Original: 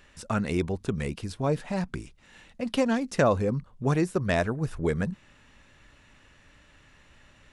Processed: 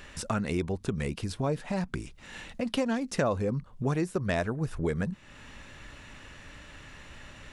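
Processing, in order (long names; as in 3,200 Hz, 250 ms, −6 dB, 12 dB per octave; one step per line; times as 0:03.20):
downward compressor 2 to 1, threshold −45 dBFS, peak gain reduction 15 dB
level +9 dB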